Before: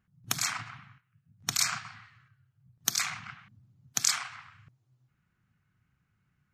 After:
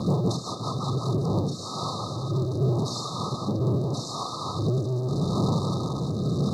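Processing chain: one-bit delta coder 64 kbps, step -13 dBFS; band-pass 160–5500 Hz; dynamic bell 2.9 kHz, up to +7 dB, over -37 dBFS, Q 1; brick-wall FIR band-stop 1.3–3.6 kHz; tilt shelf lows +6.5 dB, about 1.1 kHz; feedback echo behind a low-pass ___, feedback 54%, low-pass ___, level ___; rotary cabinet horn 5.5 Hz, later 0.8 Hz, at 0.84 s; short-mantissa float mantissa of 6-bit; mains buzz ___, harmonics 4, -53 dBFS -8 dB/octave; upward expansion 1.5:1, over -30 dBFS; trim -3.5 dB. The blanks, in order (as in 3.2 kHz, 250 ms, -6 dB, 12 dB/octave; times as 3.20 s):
218 ms, 1.6 kHz, -15 dB, 400 Hz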